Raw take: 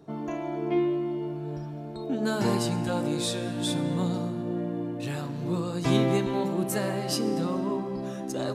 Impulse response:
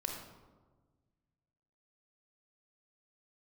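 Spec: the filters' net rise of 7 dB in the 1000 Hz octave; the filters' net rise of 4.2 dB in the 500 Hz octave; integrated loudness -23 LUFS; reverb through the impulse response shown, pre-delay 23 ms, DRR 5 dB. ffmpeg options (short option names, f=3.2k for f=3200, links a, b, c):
-filter_complex "[0:a]equalizer=f=500:t=o:g=4,equalizer=f=1k:t=o:g=7.5,asplit=2[a][b];[1:a]atrim=start_sample=2205,adelay=23[c];[b][c]afir=irnorm=-1:irlink=0,volume=-6dB[d];[a][d]amix=inputs=2:normalize=0,volume=2dB"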